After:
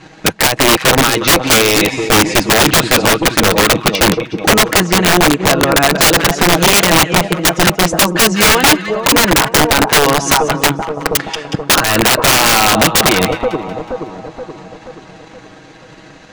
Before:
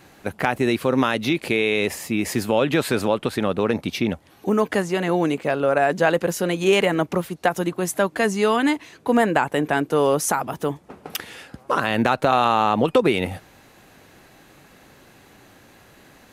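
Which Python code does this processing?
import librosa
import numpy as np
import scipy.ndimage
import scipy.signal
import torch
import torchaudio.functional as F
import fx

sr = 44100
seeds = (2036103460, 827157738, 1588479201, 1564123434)

p1 = scipy.signal.sosfilt(scipy.signal.butter(4, 6800.0, 'lowpass', fs=sr, output='sos'), x)
p2 = p1 + 0.7 * np.pad(p1, (int(6.3 * sr / 1000.0), 0))[:len(p1)]
p3 = fx.transient(p2, sr, attack_db=11, sustain_db=-3)
p4 = 10.0 ** (-4.5 / 20.0) * (np.abs((p3 / 10.0 ** (-4.5 / 20.0) + 3.0) % 4.0 - 2.0) - 1.0)
p5 = p4 + fx.echo_split(p4, sr, split_hz=1100.0, low_ms=476, high_ms=184, feedback_pct=52, wet_db=-12.0, dry=0)
p6 = (np.mod(10.0 ** (11.5 / 20.0) * p5 + 1.0, 2.0) - 1.0) / 10.0 ** (11.5 / 20.0)
y = p6 * librosa.db_to_amplitude(8.5)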